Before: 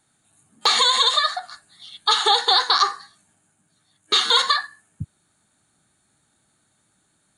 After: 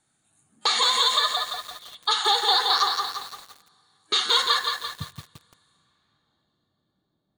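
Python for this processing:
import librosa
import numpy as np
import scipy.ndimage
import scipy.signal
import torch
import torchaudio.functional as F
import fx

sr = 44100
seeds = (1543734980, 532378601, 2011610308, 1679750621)

y = fx.filter_sweep_lowpass(x, sr, from_hz=9500.0, to_hz=570.0, start_s=5.7, end_s=6.52, q=0.95)
y = fx.rev_double_slope(y, sr, seeds[0], early_s=0.44, late_s=4.5, knee_db=-20, drr_db=18.0)
y = fx.echo_crushed(y, sr, ms=171, feedback_pct=55, bits=6, wet_db=-4.0)
y = F.gain(torch.from_numpy(y), -5.0).numpy()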